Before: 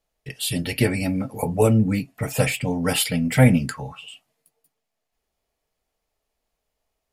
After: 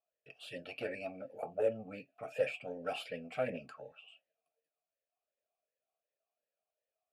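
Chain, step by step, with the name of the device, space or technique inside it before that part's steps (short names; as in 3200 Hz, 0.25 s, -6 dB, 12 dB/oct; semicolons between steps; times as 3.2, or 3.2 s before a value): talk box (tube stage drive 13 dB, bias 0.4; vowel sweep a-e 2.7 Hz); gain -1.5 dB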